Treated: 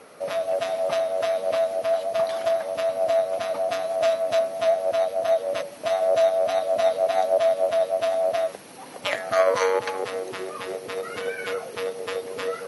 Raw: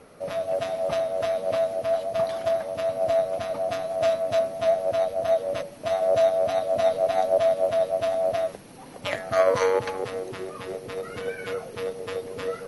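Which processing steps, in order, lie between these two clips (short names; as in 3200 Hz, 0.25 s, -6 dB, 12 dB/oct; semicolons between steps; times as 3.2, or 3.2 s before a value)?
in parallel at -3 dB: compressor, threshold -29 dBFS, peak gain reduction 13 dB; on the sum: HPF 500 Hz 6 dB/oct; gain +1 dB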